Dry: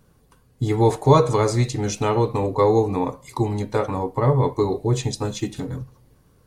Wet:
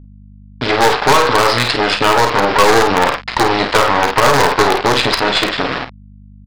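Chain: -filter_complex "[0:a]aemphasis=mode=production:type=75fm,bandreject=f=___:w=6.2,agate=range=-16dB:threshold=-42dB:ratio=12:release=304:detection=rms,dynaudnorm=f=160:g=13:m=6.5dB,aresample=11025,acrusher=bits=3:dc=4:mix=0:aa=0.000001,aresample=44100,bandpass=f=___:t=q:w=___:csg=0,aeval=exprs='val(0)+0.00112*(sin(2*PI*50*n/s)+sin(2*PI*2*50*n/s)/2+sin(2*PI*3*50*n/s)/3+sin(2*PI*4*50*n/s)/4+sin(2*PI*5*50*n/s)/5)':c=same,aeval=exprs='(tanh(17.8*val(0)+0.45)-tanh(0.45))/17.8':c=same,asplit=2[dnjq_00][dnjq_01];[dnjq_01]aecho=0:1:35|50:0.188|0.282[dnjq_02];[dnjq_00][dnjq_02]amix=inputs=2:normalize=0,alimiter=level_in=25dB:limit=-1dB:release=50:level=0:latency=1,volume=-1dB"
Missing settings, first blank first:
2.2k, 1.6k, 0.77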